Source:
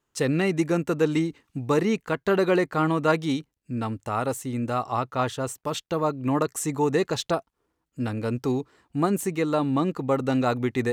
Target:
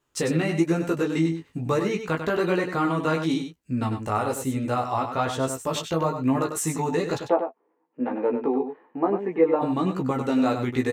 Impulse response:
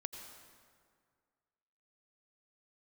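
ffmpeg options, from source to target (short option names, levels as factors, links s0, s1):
-filter_complex "[0:a]acompressor=threshold=0.0447:ratio=2,flanger=delay=15:depth=4.1:speed=1.1,asplit=3[s0][s1][s2];[s0]afade=t=out:st=7.17:d=0.02[s3];[s1]highpass=f=240:w=0.5412,highpass=f=240:w=1.3066,equalizer=f=480:t=q:w=4:g=7,equalizer=f=850:t=q:w=4:g=8,equalizer=f=1400:t=q:w=4:g=-7,lowpass=f=2100:w=0.5412,lowpass=f=2100:w=1.3066,afade=t=in:st=7.17:d=0.02,afade=t=out:st=9.61:d=0.02[s4];[s2]afade=t=in:st=9.61:d=0.02[s5];[s3][s4][s5]amix=inputs=3:normalize=0,asplit=2[s6][s7];[s7]adelay=12,volume=0.282[s8];[s6][s8]amix=inputs=2:normalize=0,aecho=1:1:97:0.398,volume=2"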